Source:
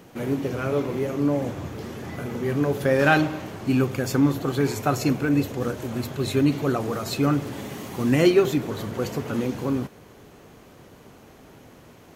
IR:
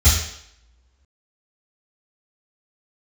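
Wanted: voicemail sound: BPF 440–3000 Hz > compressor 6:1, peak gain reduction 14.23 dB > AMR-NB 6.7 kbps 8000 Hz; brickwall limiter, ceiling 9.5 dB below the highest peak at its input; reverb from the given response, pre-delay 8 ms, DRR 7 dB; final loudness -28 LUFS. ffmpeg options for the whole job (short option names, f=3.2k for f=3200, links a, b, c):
-filter_complex "[0:a]alimiter=limit=-14dB:level=0:latency=1,asplit=2[a][b];[1:a]atrim=start_sample=2205,adelay=8[c];[b][c]afir=irnorm=-1:irlink=0,volume=-25dB[d];[a][d]amix=inputs=2:normalize=0,highpass=440,lowpass=3k,acompressor=threshold=-36dB:ratio=6,volume=13dB" -ar 8000 -c:a libopencore_amrnb -b:a 6700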